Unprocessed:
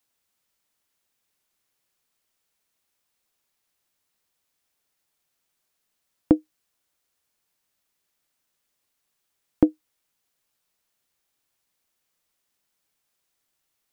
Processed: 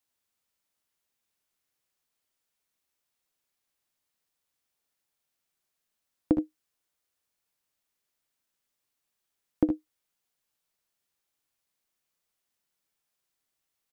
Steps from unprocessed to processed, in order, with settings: early reflections 62 ms -10.5 dB, 75 ms -9 dB; gain -6.5 dB

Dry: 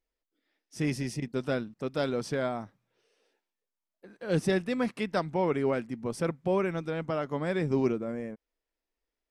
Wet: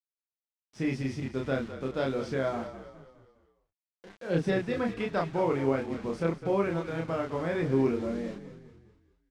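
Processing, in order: tone controls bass -1 dB, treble -4 dB; bit-crush 8-bit; air absorption 89 m; doubler 30 ms -2.5 dB; frequency-shifting echo 0.205 s, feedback 46%, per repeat -38 Hz, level -12 dB; gain -1.5 dB

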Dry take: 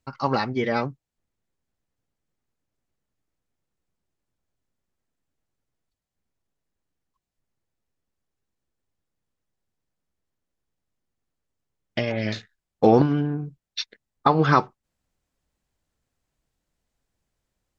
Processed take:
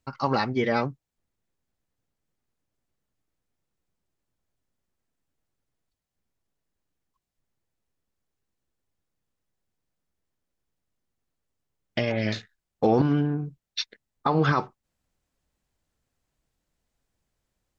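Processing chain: limiter -11.5 dBFS, peak gain reduction 8.5 dB

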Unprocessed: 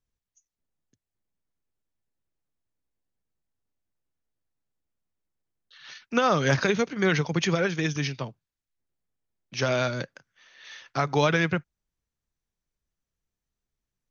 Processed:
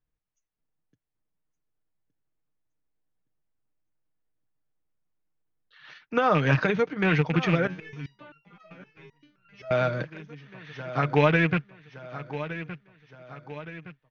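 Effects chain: rattling part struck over -26 dBFS, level -17 dBFS; LPF 2400 Hz 12 dB/oct; comb 6.5 ms, depth 42%; feedback echo 1.167 s, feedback 50%, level -13 dB; 7.67–9.71 stepped resonator 7.7 Hz 92–1400 Hz

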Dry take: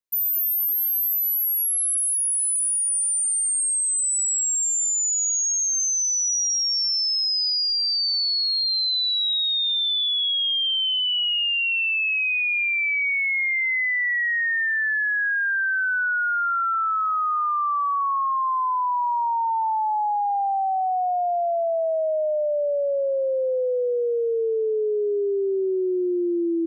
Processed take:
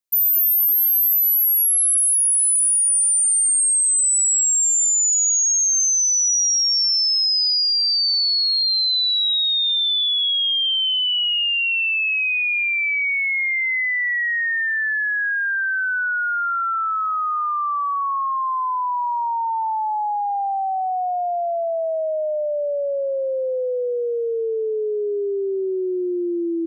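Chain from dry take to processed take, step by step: high shelf 3300 Hz +6 dB

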